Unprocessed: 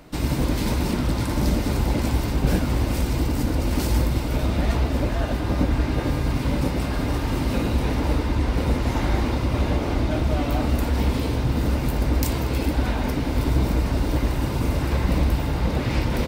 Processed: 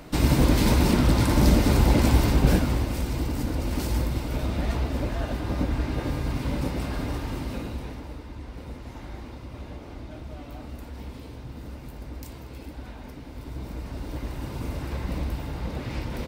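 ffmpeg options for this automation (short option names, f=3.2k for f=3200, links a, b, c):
-af "volume=11dB,afade=t=out:st=2.28:d=0.61:silence=0.398107,afade=t=out:st=6.95:d=1.14:silence=0.251189,afade=t=in:st=13.41:d=1.2:silence=0.398107"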